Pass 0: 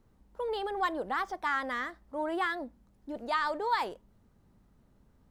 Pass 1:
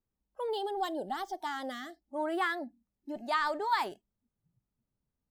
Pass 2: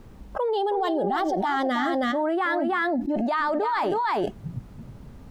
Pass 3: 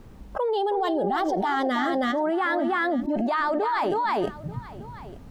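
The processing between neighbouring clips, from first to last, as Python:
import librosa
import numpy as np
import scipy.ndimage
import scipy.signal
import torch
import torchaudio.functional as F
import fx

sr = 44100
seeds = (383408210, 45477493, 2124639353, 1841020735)

y1 = fx.spec_box(x, sr, start_s=0.5, length_s=1.65, low_hz=940.0, high_hz=2800.0, gain_db=-10)
y1 = fx.noise_reduce_blind(y1, sr, reduce_db=23)
y1 = fx.high_shelf(y1, sr, hz=9900.0, db=7.5)
y2 = fx.lowpass(y1, sr, hz=1400.0, slope=6)
y2 = y2 + 10.0 ** (-10.0 / 20.0) * np.pad(y2, (int(320 * sr / 1000.0), 0))[:len(y2)]
y2 = fx.env_flatten(y2, sr, amount_pct=100)
y2 = y2 * 10.0 ** (2.0 / 20.0)
y3 = y2 + 10.0 ** (-18.0 / 20.0) * np.pad(y2, (int(887 * sr / 1000.0), 0))[:len(y2)]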